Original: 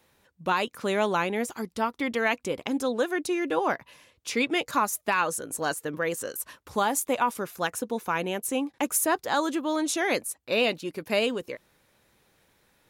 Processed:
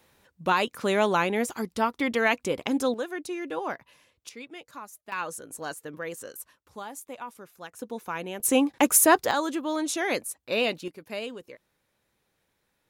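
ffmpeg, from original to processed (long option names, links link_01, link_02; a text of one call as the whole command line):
ffmpeg -i in.wav -af "asetnsamples=nb_out_samples=441:pad=0,asendcmd='2.94 volume volume -6dB;4.29 volume volume -17dB;5.12 volume volume -7dB;6.46 volume volume -14dB;7.79 volume volume -5.5dB;8.4 volume volume 6.5dB;9.31 volume volume -1.5dB;10.88 volume volume -9.5dB',volume=2dB" out.wav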